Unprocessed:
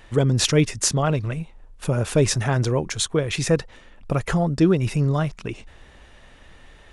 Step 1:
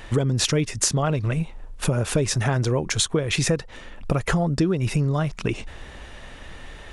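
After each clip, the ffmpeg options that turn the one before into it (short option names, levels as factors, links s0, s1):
-af "acompressor=threshold=0.0447:ratio=6,volume=2.51"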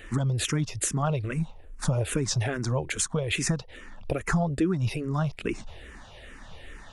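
-filter_complex "[0:a]asplit=2[s0][s1];[s1]afreqshift=-2.4[s2];[s0][s2]amix=inputs=2:normalize=1,volume=0.794"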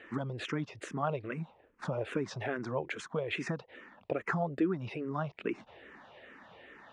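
-af "highpass=240,lowpass=2300,volume=0.708"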